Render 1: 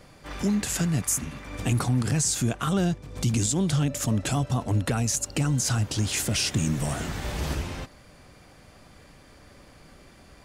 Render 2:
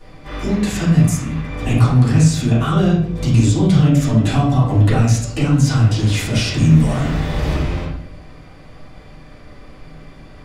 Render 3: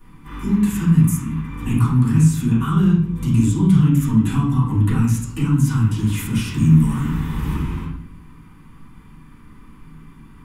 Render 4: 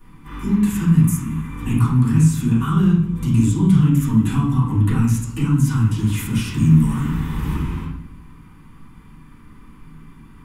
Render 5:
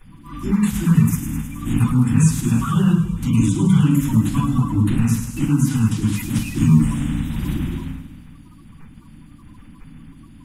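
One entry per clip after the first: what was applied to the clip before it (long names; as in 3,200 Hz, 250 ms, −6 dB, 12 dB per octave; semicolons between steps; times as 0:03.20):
convolution reverb RT60 0.60 s, pre-delay 3 ms, DRR −11.5 dB; level −4 dB
drawn EQ curve 120 Hz 0 dB, 210 Hz +7 dB, 420 Hz −6 dB, 650 Hz −27 dB, 930 Hz +4 dB, 1,300 Hz 0 dB, 1,900 Hz −4 dB, 3,000 Hz −3 dB, 4,600 Hz −12 dB, 12,000 Hz +10 dB; level −4.5 dB
four-comb reverb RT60 2 s, combs from 27 ms, DRR 19 dB
spectral magnitudes quantised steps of 30 dB; delay with a high-pass on its return 105 ms, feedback 67%, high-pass 4,600 Hz, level −7 dB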